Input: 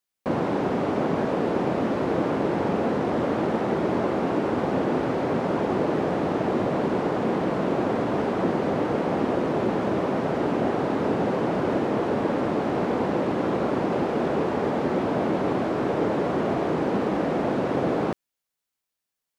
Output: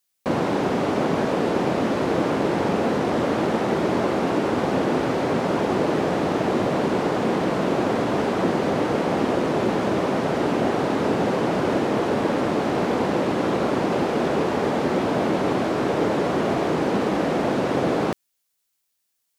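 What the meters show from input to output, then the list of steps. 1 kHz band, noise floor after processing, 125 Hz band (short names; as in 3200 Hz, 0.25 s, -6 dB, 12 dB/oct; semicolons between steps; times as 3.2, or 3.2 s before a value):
+3.0 dB, -74 dBFS, +2.0 dB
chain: high shelf 2900 Hz +9.5 dB; gain +2 dB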